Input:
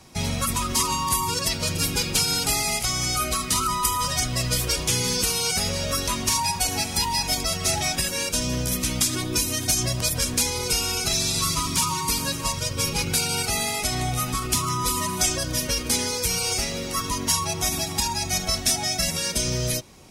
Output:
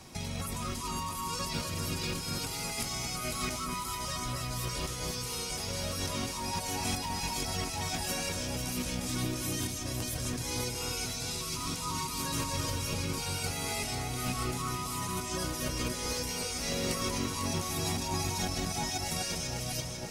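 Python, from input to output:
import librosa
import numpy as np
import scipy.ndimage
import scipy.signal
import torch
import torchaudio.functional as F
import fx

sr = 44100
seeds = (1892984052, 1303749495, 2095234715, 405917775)

y = fx.over_compress(x, sr, threshold_db=-31.0, ratio=-1.0)
y = fx.dmg_noise_colour(y, sr, seeds[0], colour='white', level_db=-61.0, at=(2.0, 4.04), fade=0.02)
y = fx.echo_alternate(y, sr, ms=249, hz=2000.0, feedback_pct=77, wet_db=-3.5)
y = y * librosa.db_to_amplitude(-6.0)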